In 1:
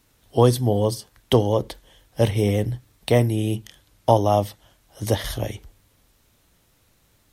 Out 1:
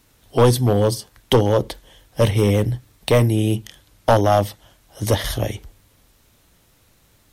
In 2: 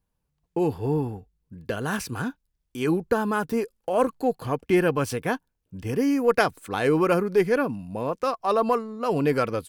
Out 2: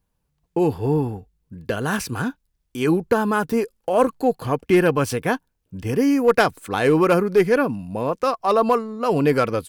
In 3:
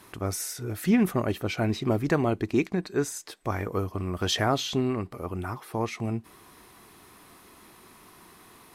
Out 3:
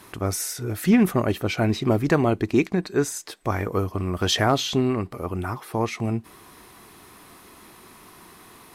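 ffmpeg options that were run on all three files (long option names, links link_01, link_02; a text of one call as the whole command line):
ffmpeg -i in.wav -af "aeval=exprs='clip(val(0),-1,0.2)':channel_layout=same,volume=4.5dB" out.wav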